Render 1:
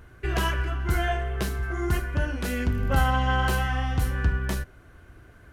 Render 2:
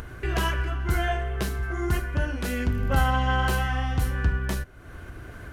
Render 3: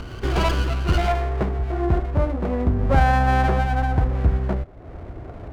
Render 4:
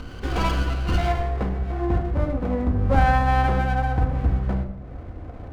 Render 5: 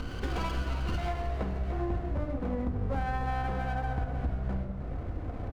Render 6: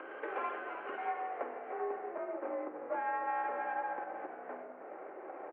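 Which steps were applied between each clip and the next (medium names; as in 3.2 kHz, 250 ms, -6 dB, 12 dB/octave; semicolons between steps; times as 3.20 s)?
upward compressor, threshold -29 dBFS
low-pass sweep 1.6 kHz -> 740 Hz, 0.87–1.63 s; sliding maximum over 17 samples; trim +5 dB
simulated room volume 2700 m³, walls furnished, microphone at 2 m; trim -4 dB
compression 6:1, threshold -29 dBFS, peak gain reduction 16 dB; frequency-shifting echo 311 ms, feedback 53%, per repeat -58 Hz, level -11 dB
distance through air 140 m; mistuned SSB +59 Hz 340–2300 Hz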